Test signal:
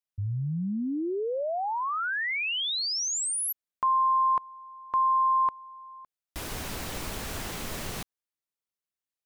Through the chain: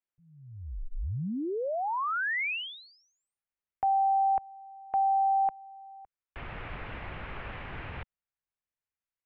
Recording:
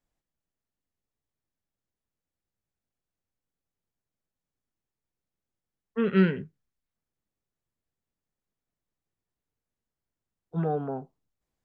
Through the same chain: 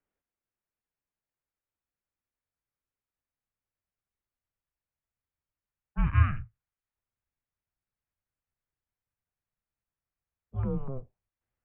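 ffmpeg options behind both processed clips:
-af "asubboost=boost=10:cutoff=170,highpass=f=270:t=q:w=0.5412,highpass=f=270:t=q:w=1.307,lowpass=f=2900:t=q:w=0.5176,lowpass=f=2900:t=q:w=0.7071,lowpass=f=2900:t=q:w=1.932,afreqshift=-270"

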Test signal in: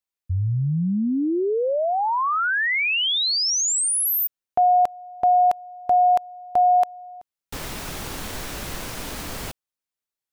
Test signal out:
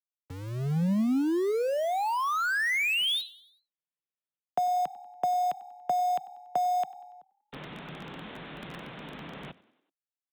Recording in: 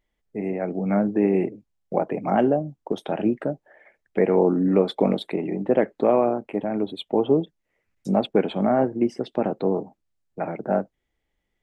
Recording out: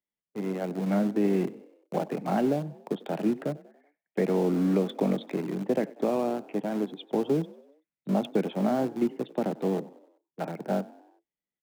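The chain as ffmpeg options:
-filter_complex "[0:a]agate=range=0.316:threshold=0.0112:ratio=16:release=134:detection=rms,aresample=8000,aresample=44100,asplit=2[s0][s1];[s1]aeval=exprs='val(0)*gte(abs(val(0)),0.0668)':c=same,volume=0.531[s2];[s0][s2]amix=inputs=2:normalize=0,lowshelf=f=120:t=q:w=3:g=-7.5,acrossover=split=190|1300[s3][s4][s5];[s3]asoftclip=type=tanh:threshold=0.0596[s6];[s6][s4][s5]amix=inputs=3:normalize=0,acrossover=split=300|2300[s7][s8][s9];[s8]acompressor=threshold=0.126:ratio=6:release=196:knee=2.83:detection=peak[s10];[s7][s10][s9]amix=inputs=3:normalize=0,highpass=47,asplit=5[s11][s12][s13][s14][s15];[s12]adelay=95,afreqshift=36,volume=0.0891[s16];[s13]adelay=190,afreqshift=72,volume=0.0473[s17];[s14]adelay=285,afreqshift=108,volume=0.0251[s18];[s15]adelay=380,afreqshift=144,volume=0.0133[s19];[s11][s16][s17][s18][s19]amix=inputs=5:normalize=0,volume=0.376"

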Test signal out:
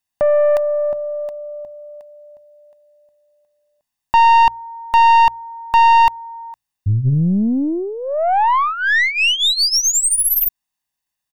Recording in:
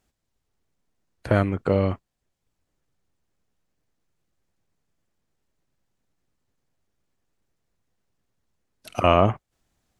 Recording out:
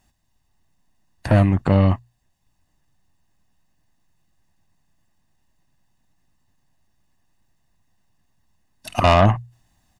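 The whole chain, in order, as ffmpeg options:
-af "bandreject=f=60:t=h:w=6,bandreject=f=120:t=h:w=6,aecho=1:1:1.1:0.68,aeval=exprs='(tanh(5.62*val(0)+0.3)-tanh(0.3))/5.62':c=same,volume=2.24"

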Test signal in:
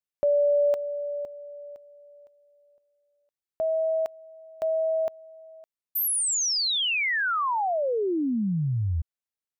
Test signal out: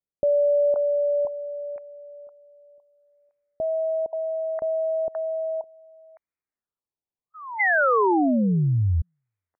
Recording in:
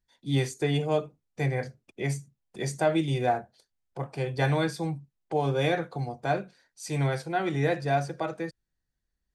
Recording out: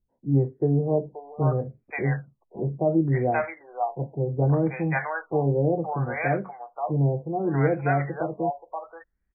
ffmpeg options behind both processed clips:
-filter_complex "[0:a]acrossover=split=700[s0][s1];[s1]adelay=530[s2];[s0][s2]amix=inputs=2:normalize=0,afftfilt=real='re*lt(b*sr/1024,990*pow(2600/990,0.5+0.5*sin(2*PI*0.67*pts/sr)))':imag='im*lt(b*sr/1024,990*pow(2600/990,0.5+0.5*sin(2*PI*0.67*pts/sr)))':win_size=1024:overlap=0.75,volume=1.78"

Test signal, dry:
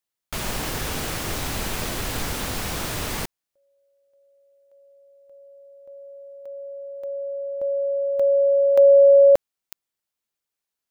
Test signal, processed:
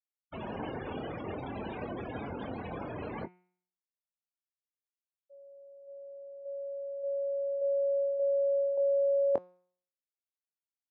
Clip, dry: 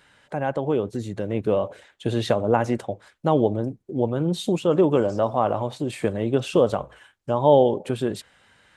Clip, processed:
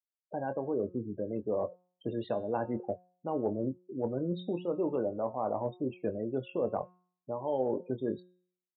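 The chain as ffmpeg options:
-filter_complex "[0:a]afftfilt=real='re*gte(hypot(re,im),0.0562)':imag='im*gte(hypot(re,im),0.0562)':win_size=1024:overlap=0.75,highpass=130,equalizer=f=150:t=q:w=4:g=-6,equalizer=f=1300:t=q:w=4:g=-6,equalizer=f=1900:t=q:w=4:g=-5,lowpass=f=3100:w=0.5412,lowpass=f=3100:w=1.3066,areverse,acompressor=threshold=0.0631:ratio=6:attack=19:release=391:knee=1:detection=rms,areverse,asplit=2[s0][s1];[s1]adelay=23,volume=0.299[s2];[s0][s2]amix=inputs=2:normalize=0,bandreject=f=180.3:t=h:w=4,bandreject=f=360.6:t=h:w=4,bandreject=f=540.9:t=h:w=4,bandreject=f=721.2:t=h:w=4,bandreject=f=901.5:t=h:w=4,bandreject=f=1081.8:t=h:w=4,bandreject=f=1262.1:t=h:w=4,bandreject=f=1442.4:t=h:w=4,bandreject=f=1622.7:t=h:w=4,bandreject=f=1803:t=h:w=4,bandreject=f=1983.3:t=h:w=4,bandreject=f=2163.6:t=h:w=4,bandreject=f=2343.9:t=h:w=4,bandreject=f=2524.2:t=h:w=4,bandreject=f=2704.5:t=h:w=4,bandreject=f=2884.8:t=h:w=4,bandreject=f=3065.1:t=h:w=4,bandreject=f=3245.4:t=h:w=4,bandreject=f=3425.7:t=h:w=4,bandreject=f=3606:t=h:w=4,bandreject=f=3786.3:t=h:w=4,bandreject=f=3966.6:t=h:w=4,bandreject=f=4146.9:t=h:w=4,bandreject=f=4327.2:t=h:w=4,bandreject=f=4507.5:t=h:w=4,bandreject=f=4687.8:t=h:w=4,bandreject=f=4868.1:t=h:w=4,bandreject=f=5048.4:t=h:w=4,bandreject=f=5228.7:t=h:w=4,bandreject=f=5409:t=h:w=4,bandreject=f=5589.3:t=h:w=4,bandreject=f=5769.6:t=h:w=4,bandreject=f=5949.9:t=h:w=4,bandreject=f=6130.2:t=h:w=4,bandreject=f=6310.5:t=h:w=4,bandreject=f=6490.8:t=h:w=4,bandreject=f=6671.1:t=h:w=4,bandreject=f=6851.4:t=h:w=4,volume=0.631"

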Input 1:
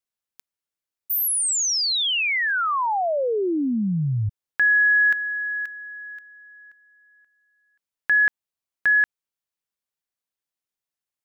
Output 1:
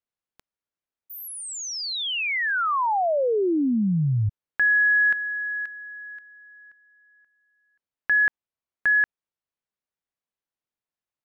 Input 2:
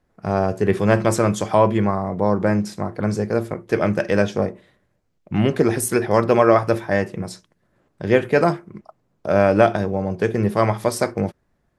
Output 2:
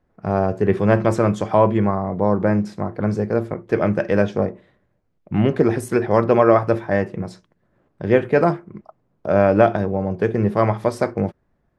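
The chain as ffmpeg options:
-af "lowpass=f=1800:p=1,volume=1.12"

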